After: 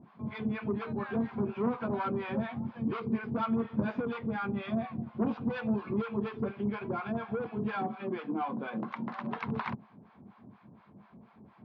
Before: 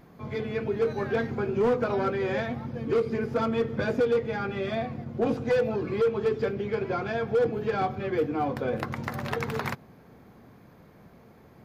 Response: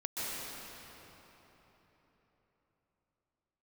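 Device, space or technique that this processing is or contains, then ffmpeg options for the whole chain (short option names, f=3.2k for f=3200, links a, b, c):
guitar amplifier with harmonic tremolo: -filter_complex "[0:a]acrossover=split=690[a][b];[a]aeval=exprs='val(0)*(1-1/2+1/2*cos(2*PI*4.2*n/s))':c=same[c];[b]aeval=exprs='val(0)*(1-1/2-1/2*cos(2*PI*4.2*n/s))':c=same[d];[c][d]amix=inputs=2:normalize=0,asoftclip=type=tanh:threshold=-23.5dB,highpass=86,equalizer=f=210:t=q:w=4:g=9,equalizer=f=490:t=q:w=4:g=-8,equalizer=f=1k:t=q:w=4:g=7,equalizer=f=1.9k:t=q:w=4:g=-4,lowpass=f=3.5k:w=0.5412,lowpass=f=3.5k:w=1.3066,asettb=1/sr,asplit=3[e][f][g];[e]atrim=end=7.764[h];[f]atrim=start=7.76:end=9.38,asetpts=PTS-STARTPTS,afade=t=in:d=0.004:c=qsin,afade=t=out:st=1.616:d=0.004:c=qsin,highpass=f=170:w=0.5412,highpass=f=170:w=1.3066[i];[g]atrim=start=9.376[j];[h][i]acrossfade=d=0.004:c1=hsin:c2=qsin[k];[k][j]acrossfade=d=0.004:c1=qsin:c2=hsin"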